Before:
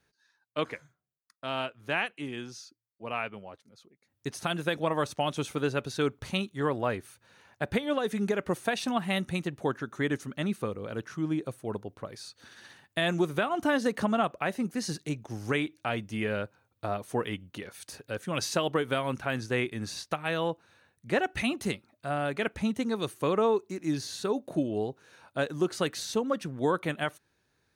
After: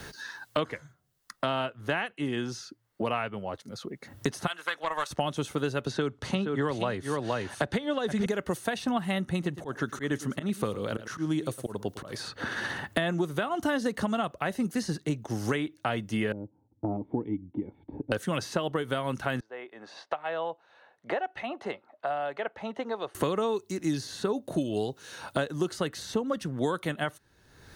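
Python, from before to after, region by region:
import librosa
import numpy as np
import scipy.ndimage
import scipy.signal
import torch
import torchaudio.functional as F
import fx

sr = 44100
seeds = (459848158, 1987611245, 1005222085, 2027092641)

y = fx.chain(x, sr, fx.highpass(hz=1200.0, slope=12),
    fx.doppler_dist(depth_ms=0.11), at=(4.47, 5.11))
y = fx.chain(y, sr, fx.lowpass(hz=7600.0, slope=12),
    fx.echo_single(ms=470, db=-10.5),
    fx.band_squash(depth_pct=70), at=(5.86, 8.26))
y = fx.chain(y, sr, fx.auto_swell(attack_ms=234.0),
    fx.echo_single(ms=108, db=-15.5), at=(9.31, 12.19))
y = fx.chain(y, sr, fx.formant_cascade(vowel='u'),
    fx.low_shelf(hz=160.0, db=10.5), at=(16.32, 18.12))
y = fx.chain(y, sr, fx.ladder_bandpass(hz=910.0, resonance_pct=35),
    fx.peak_eq(hz=1200.0, db=-5.5, octaves=1.7), at=(19.4, 23.15))
y = fx.low_shelf(y, sr, hz=65.0, db=6.5)
y = fx.notch(y, sr, hz=2400.0, q=8.4)
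y = fx.band_squash(y, sr, depth_pct=100)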